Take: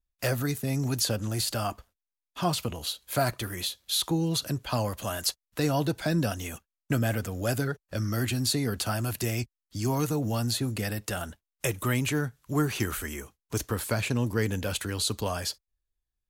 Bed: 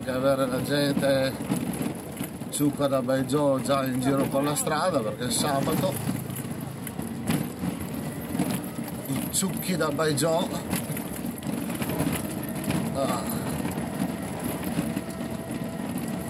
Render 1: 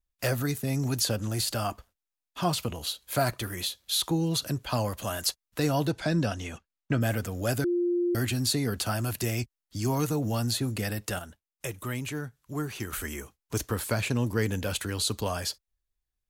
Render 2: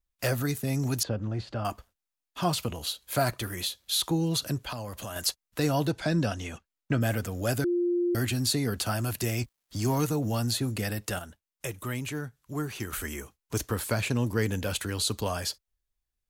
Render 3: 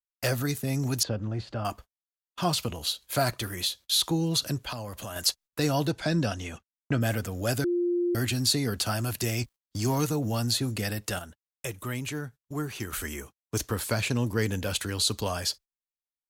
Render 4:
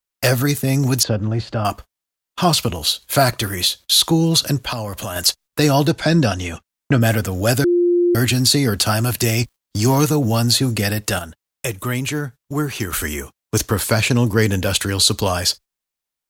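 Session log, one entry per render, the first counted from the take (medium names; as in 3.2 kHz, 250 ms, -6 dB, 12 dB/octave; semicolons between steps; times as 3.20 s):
5.89–7.00 s: low-pass 8.9 kHz -> 3.7 kHz; 7.64–8.15 s: bleep 350 Hz -23 dBFS; 11.19–12.93 s: gain -6.5 dB
1.03–1.65 s: tape spacing loss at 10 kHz 36 dB; 4.72–5.16 s: compression 4:1, threshold -34 dBFS; 9.41–10.06 s: companding laws mixed up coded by mu
dynamic bell 4.8 kHz, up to +4 dB, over -42 dBFS, Q 0.86; gate -45 dBFS, range -32 dB
trim +11 dB; peak limiter -3 dBFS, peak gain reduction 3 dB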